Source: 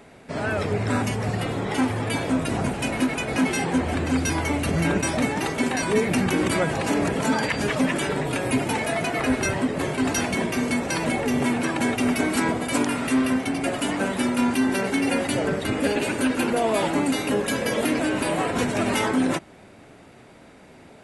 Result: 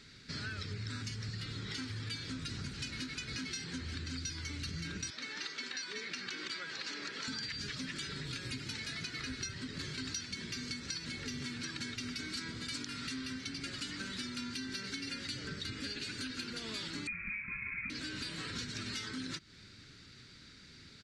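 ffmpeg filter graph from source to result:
ffmpeg -i in.wav -filter_complex "[0:a]asettb=1/sr,asplit=3[link_01][link_02][link_03];[link_01]atrim=end=5.104[link_04];[link_02]atrim=start=5.1:end=7.28,asetpts=PTS-STARTPTS,afade=type=in:duration=0.004:curve=qsin,afade=type=out:start_time=2.176:duration=0.004:curve=qsin,highpass=480,lowpass=8000,aemphasis=mode=reproduction:type=cd[link_05];[link_03]atrim=start=7.276[link_06];[link_04][link_05]acrossfade=duration=0.004:curve1=hsin:curve2=qsin[link_07];[link_07][link_06]acrossfade=duration=0.004:curve1=qsin:curve2=hsin,asettb=1/sr,asplit=3[link_08][link_09][link_10];[link_08]atrim=end=17.074[link_11];[link_09]atrim=start=17.07:end=17.9,asetpts=PTS-STARTPTS,afade=type=in:duration=0.004:curve=qsin,afade=type=out:start_time=0.826:duration=0.004:curve=qsin,highpass=44,lowpass=frequency=2300:width_type=q:width=0.5098,lowpass=frequency=2300:width_type=q:width=0.6013,lowpass=frequency=2300:width_type=q:width=0.9,lowpass=frequency=2300:width_type=q:width=2.563,afreqshift=-2700,lowshelf=frequency=300:width_type=q:width=3:gain=13[link_12];[link_10]atrim=start=17.896[link_13];[link_11][link_12]acrossfade=duration=0.004:curve1=hsin:curve2=qsin[link_14];[link_14][link_13]acrossfade=duration=0.004:curve1=qsin:curve2=hsin,firequalizer=gain_entry='entry(110,0);entry(190,-6);entry(400,-12);entry(690,-27);entry(1400,-2);entry(2700,-2);entry(4300,14);entry(10000,-12)':delay=0.05:min_phase=1,acompressor=threshold=-35dB:ratio=6,volume=-3.5dB" out.wav

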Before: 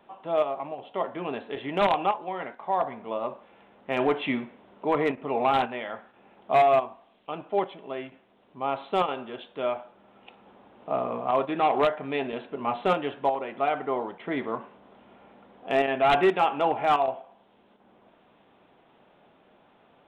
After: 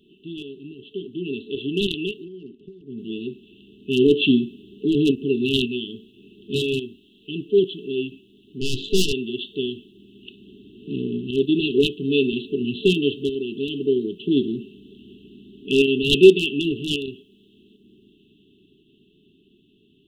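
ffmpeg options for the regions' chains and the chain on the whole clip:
ffmpeg -i in.wav -filter_complex "[0:a]asettb=1/sr,asplit=3[link_01][link_02][link_03];[link_01]atrim=end=2.254[link_04];[link_02]atrim=start=2.25:end=2.98,asetpts=PTS-STARTPTS,afade=type=in:duration=0.004:curve=qsin,afade=type=out:start_time=0.726:duration=0.004:curve=qsin,lowpass=1800,acompressor=threshold=-36dB:ratio=8:attack=3.2:release=140:knee=1:detection=peak[link_05];[link_03]atrim=start=2.976[link_06];[link_04][link_05]acrossfade=duration=0.004:curve1=hsin:curve2=qsin[link_07];[link_07][link_06]acrossfade=duration=0.004:curve1=qsin:curve2=hsin,asettb=1/sr,asplit=3[link_08][link_09][link_10];[link_08]atrim=end=8.614[link_11];[link_09]atrim=start=8.61:end=9.13,asetpts=PTS-STARTPTS,afade=type=in:duration=0.004:curve=qsin,afade=type=out:start_time=0.516:duration=0.004:curve=qsin,acontrast=60,aeval=exprs='(tanh(15.8*val(0)+0.7)-tanh(0.7))/15.8':channel_layout=same,asplit=2[link_12][link_13];[link_13]adelay=16,volume=-13.5dB[link_14];[link_12][link_14]amix=inputs=2:normalize=0,atrim=end_sample=22932[link_15];[link_10]atrim=start=9.126[link_16];[link_11][link_15]acrossfade=duration=0.004:curve1=hsin:curve2=qsin[link_17];[link_17][link_16]acrossfade=duration=0.004:curve1=qsin:curve2=hsin,afftfilt=real='re*(1-between(b*sr/4096,440,2600))':imag='im*(1-between(b*sr/4096,440,2600))':win_size=4096:overlap=0.75,dynaudnorm=framelen=160:gausssize=31:maxgain=6dB,adynamicequalizer=threshold=0.00631:dfrequency=3800:dqfactor=0.7:tfrequency=3800:tqfactor=0.7:attack=5:release=100:ratio=0.375:range=3:mode=boostabove:tftype=highshelf,volume=6dB" out.wav

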